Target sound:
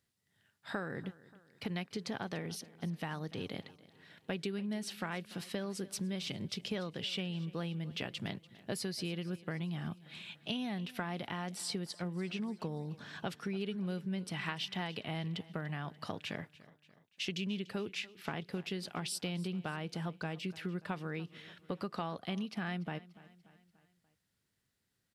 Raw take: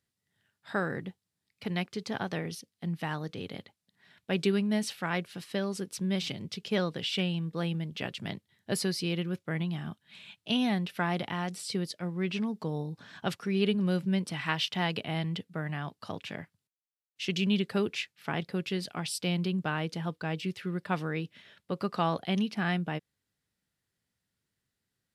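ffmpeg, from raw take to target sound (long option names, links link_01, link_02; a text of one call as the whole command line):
ffmpeg -i in.wav -filter_complex "[0:a]acompressor=threshold=-37dB:ratio=6,asplit=2[link_01][link_02];[link_02]aecho=0:1:291|582|873|1164:0.106|0.054|0.0276|0.0141[link_03];[link_01][link_03]amix=inputs=2:normalize=0,volume=1.5dB" out.wav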